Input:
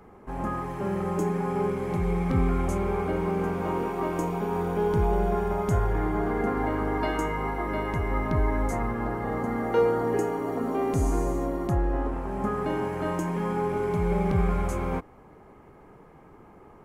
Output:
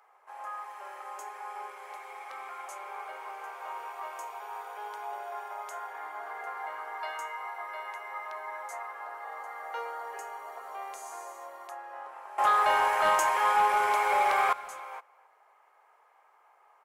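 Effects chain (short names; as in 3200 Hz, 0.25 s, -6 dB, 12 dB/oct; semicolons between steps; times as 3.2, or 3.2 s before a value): inverse Chebyshev high-pass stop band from 210 Hz, stop band 60 dB; 12.38–14.53 sine folder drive 13 dB, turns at -12 dBFS; speakerphone echo 0.27 s, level -23 dB; gain -5 dB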